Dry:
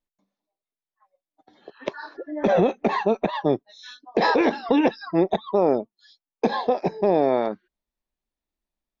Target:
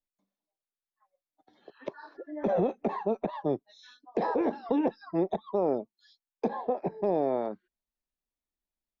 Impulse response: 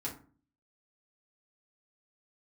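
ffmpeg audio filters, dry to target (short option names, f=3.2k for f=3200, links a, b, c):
-filter_complex "[0:a]asettb=1/sr,asplit=3[a][b][c];[a]atrim=end=6.484[d];[b]atrim=start=6.48:end=7.04,asetpts=PTS-STARTPTS,afade=t=in:d=0.004:c=qsin,afade=t=out:st=0.556:d=0.004:c=qsin,lowpass=2.3k[e];[c]atrim=start=7.036[f];[d][e]acrossfade=d=0.004:c1=hsin:c2=qsin[g];[g][f]acrossfade=d=0.004:c1=qsin:c2=hsin,acrossover=split=360|1200[h][i][j];[j]acompressor=threshold=-45dB:ratio=6[k];[h][i][k]amix=inputs=3:normalize=0,volume=-7.5dB"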